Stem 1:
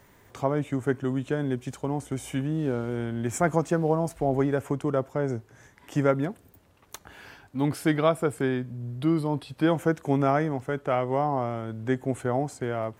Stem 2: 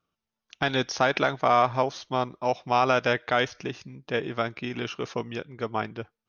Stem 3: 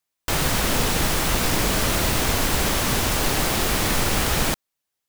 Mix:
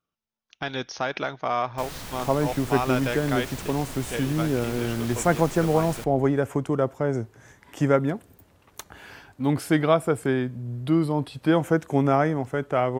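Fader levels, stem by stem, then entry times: +2.5 dB, -5.0 dB, -16.5 dB; 1.85 s, 0.00 s, 1.50 s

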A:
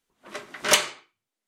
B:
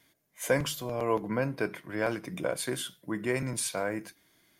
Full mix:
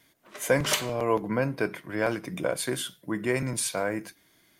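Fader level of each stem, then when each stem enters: -8.0 dB, +3.0 dB; 0.00 s, 0.00 s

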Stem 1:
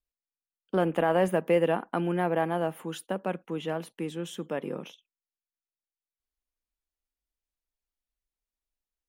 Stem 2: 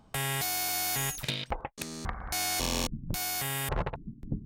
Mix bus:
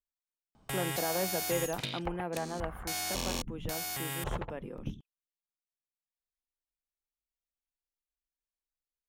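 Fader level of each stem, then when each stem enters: -9.5 dB, -4.5 dB; 0.00 s, 0.55 s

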